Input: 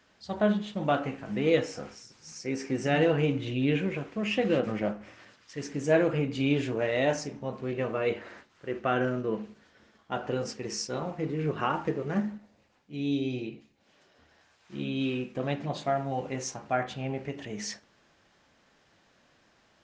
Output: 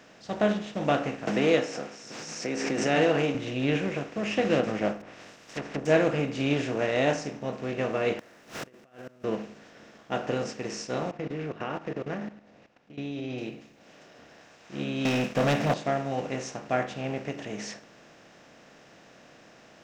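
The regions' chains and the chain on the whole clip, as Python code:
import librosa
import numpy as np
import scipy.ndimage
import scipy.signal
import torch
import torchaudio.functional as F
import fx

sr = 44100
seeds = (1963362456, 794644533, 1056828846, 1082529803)

y = fx.chain(x, sr, fx.highpass(hz=220.0, slope=12),
    fx.pre_swell(db_per_s=36.0), at=(1.27, 3.35))
y = fx.spec_flatten(y, sr, power=0.46, at=(5.0, 5.85), fade=0.02)
y = fx.env_lowpass_down(y, sr, base_hz=520.0, full_db=-29.5, at=(5.0, 5.85), fade=0.02)
y = fx.chain(y, sr, fx.zero_step(step_db=-38.5),
    fx.over_compress(threshold_db=-34.0, ratio=-0.5),
    fx.gate_flip(shuts_db=-33.0, range_db=-30), at=(8.19, 9.24))
y = fx.chain(y, sr, fx.lowpass(hz=3500.0, slope=12),
    fx.level_steps(step_db=17), at=(11.11, 13.38))
y = fx.chain(y, sr, fx.peak_eq(hz=350.0, db=-14.0, octaves=0.37),
    fx.leveller(passes=3), at=(15.05, 15.74))
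y = fx.bin_compress(y, sr, power=0.6)
y = fx.low_shelf(y, sr, hz=76.0, db=-5.5)
y = fx.upward_expand(y, sr, threshold_db=-35.0, expansion=1.5)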